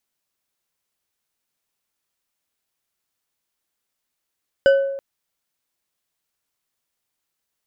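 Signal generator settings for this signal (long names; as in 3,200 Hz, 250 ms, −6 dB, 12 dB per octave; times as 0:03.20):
struck glass bar, length 0.33 s, lowest mode 549 Hz, decay 0.97 s, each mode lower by 9 dB, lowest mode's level −8.5 dB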